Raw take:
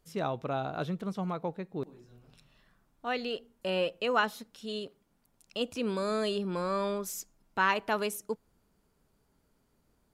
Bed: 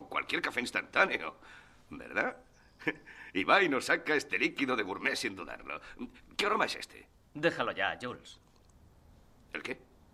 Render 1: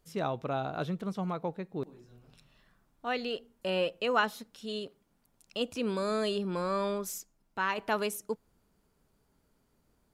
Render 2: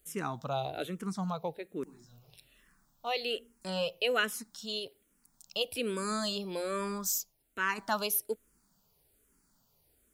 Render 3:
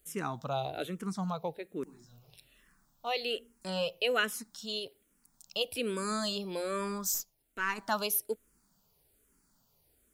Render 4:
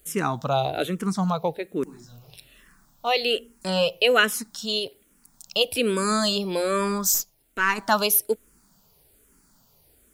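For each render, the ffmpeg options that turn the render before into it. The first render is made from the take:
ffmpeg -i in.wav -filter_complex "[0:a]asplit=3[link_01][link_02][link_03];[link_01]atrim=end=7.182[link_04];[link_02]atrim=start=7.178:end=7.782,asetpts=PTS-STARTPTS,volume=-4.5dB[link_05];[link_03]atrim=start=7.778[link_06];[link_04][link_05]acrossfade=duration=0.004:curve1=hsin:curve2=hsin[link_07];[link_07][link_06]acrossfade=duration=0.004:curve1=hsin:curve2=hsin" out.wav
ffmpeg -i in.wav -filter_complex "[0:a]crystalizer=i=3:c=0,asplit=2[link_01][link_02];[link_02]afreqshift=-1.2[link_03];[link_01][link_03]amix=inputs=2:normalize=1" out.wav
ffmpeg -i in.wav -filter_complex "[0:a]asettb=1/sr,asplit=3[link_01][link_02][link_03];[link_01]atrim=end=7.144[link_04];[link_02]atrim=start=7.14:end=7.86,asetpts=PTS-STARTPTS,afade=type=in:duration=0.004:curve=qsin,afade=type=out:start_time=0.716:duration=0.004:curve=qsin,aeval=exprs='if(lt(val(0),0),0.708*val(0),val(0))':channel_layout=same[link_05];[link_03]atrim=start=7.856[link_06];[link_04][link_05]acrossfade=duration=0.004:curve1=hsin:curve2=qsin[link_07];[link_07][link_06]acrossfade=duration=0.004:curve1=qsin:curve2=hsin" out.wav
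ffmpeg -i in.wav -af "volume=10.5dB" out.wav

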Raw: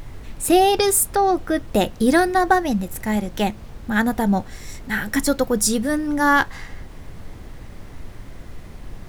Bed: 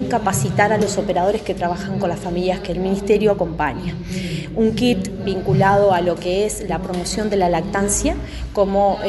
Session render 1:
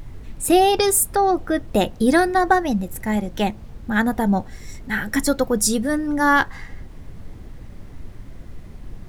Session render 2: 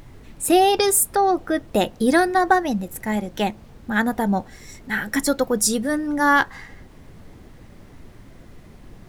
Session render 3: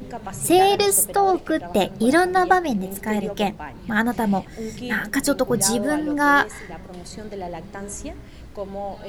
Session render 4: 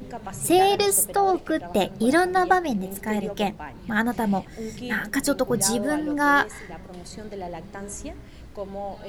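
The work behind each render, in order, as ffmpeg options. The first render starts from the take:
ffmpeg -i in.wav -af "afftdn=noise_reduction=6:noise_floor=-39" out.wav
ffmpeg -i in.wav -af "lowshelf=frequency=110:gain=-11" out.wav
ffmpeg -i in.wav -i bed.wav -filter_complex "[1:a]volume=-15dB[link_01];[0:a][link_01]amix=inputs=2:normalize=0" out.wav
ffmpeg -i in.wav -af "volume=-2.5dB" out.wav

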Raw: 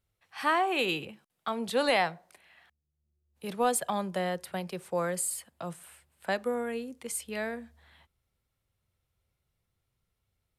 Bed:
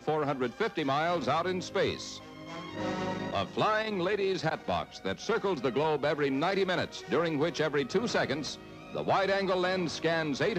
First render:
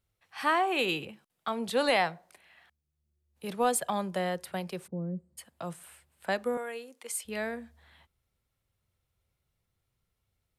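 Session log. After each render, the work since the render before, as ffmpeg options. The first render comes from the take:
ffmpeg -i in.wav -filter_complex "[0:a]asplit=3[link_01][link_02][link_03];[link_01]afade=type=out:start_time=4.86:duration=0.02[link_04];[link_02]lowpass=frequency=230:width_type=q:width=1.9,afade=type=in:start_time=4.86:duration=0.02,afade=type=out:start_time=5.37:duration=0.02[link_05];[link_03]afade=type=in:start_time=5.37:duration=0.02[link_06];[link_04][link_05][link_06]amix=inputs=3:normalize=0,asettb=1/sr,asplit=3[link_07][link_08][link_09];[link_07]atrim=end=6.574[link_10];[link_08]atrim=start=6.57:end=7.25,asetpts=PTS-STARTPTS,afade=type=in:duration=0.004:curve=qsin,afade=type=out:start_time=0.676:duration=0.004:curve=qsin,highpass=520[link_11];[link_09]atrim=start=7.246[link_12];[link_10][link_11]acrossfade=duration=0.004:curve1=hsin:curve2=qsin[link_13];[link_13][link_12]acrossfade=duration=0.004:curve1=qsin:curve2=hsin" out.wav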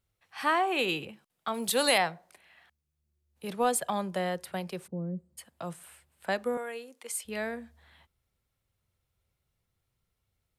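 ffmpeg -i in.wav -filter_complex "[0:a]asettb=1/sr,asplit=3[link_01][link_02][link_03];[link_01]atrim=end=1.544[link_04];[link_02]atrim=start=1.54:end=1.98,asetpts=PTS-STARTPTS,afade=type=in:duration=0.004:curve=qsin,afade=type=out:start_time=0.436:duration=0.004:curve=qsin,aemphasis=mode=production:type=75fm[link_05];[link_03]atrim=start=1.976[link_06];[link_04][link_05]acrossfade=duration=0.004:curve1=hsin:curve2=qsin[link_07];[link_07][link_06]acrossfade=duration=0.004:curve1=qsin:curve2=hsin" out.wav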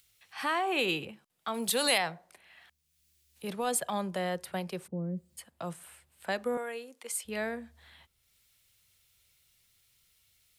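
ffmpeg -i in.wav -filter_complex "[0:a]acrossover=split=2100[link_01][link_02];[link_01]alimiter=limit=-23.5dB:level=0:latency=1[link_03];[link_02]acompressor=mode=upward:threshold=-52dB:ratio=2.5[link_04];[link_03][link_04]amix=inputs=2:normalize=0" out.wav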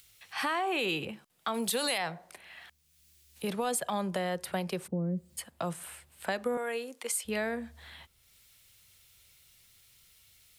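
ffmpeg -i in.wav -filter_complex "[0:a]asplit=2[link_01][link_02];[link_02]alimiter=limit=-24dB:level=0:latency=1:release=29,volume=2dB[link_03];[link_01][link_03]amix=inputs=2:normalize=0,acompressor=threshold=-31dB:ratio=2.5" out.wav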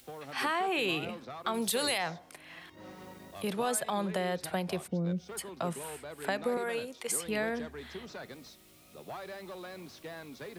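ffmpeg -i in.wav -i bed.wav -filter_complex "[1:a]volume=-15.5dB[link_01];[0:a][link_01]amix=inputs=2:normalize=0" out.wav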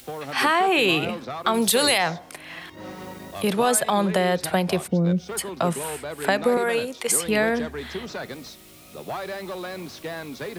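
ffmpeg -i in.wav -af "volume=11dB" out.wav

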